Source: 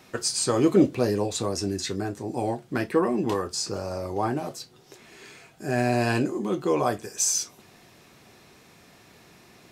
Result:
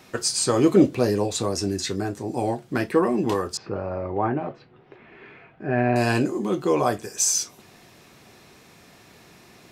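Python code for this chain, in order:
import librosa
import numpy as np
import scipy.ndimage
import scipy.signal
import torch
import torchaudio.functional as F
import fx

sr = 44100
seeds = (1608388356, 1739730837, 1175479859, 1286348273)

y = fx.lowpass(x, sr, hz=2500.0, slope=24, at=(3.57, 5.96))
y = y * 10.0 ** (2.5 / 20.0)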